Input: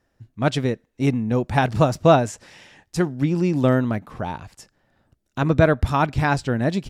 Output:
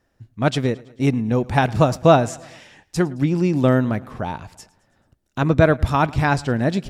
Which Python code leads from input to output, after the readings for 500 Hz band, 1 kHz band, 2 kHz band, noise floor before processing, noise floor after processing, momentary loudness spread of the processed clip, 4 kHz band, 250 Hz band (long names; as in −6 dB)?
+1.5 dB, +1.5 dB, +1.5 dB, −71 dBFS, −68 dBFS, 14 LU, +1.5 dB, +1.5 dB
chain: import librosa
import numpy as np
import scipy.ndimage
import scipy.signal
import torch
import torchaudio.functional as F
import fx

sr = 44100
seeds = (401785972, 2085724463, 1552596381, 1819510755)

y = fx.echo_feedback(x, sr, ms=109, feedback_pct=56, wet_db=-22.5)
y = y * 10.0 ** (1.5 / 20.0)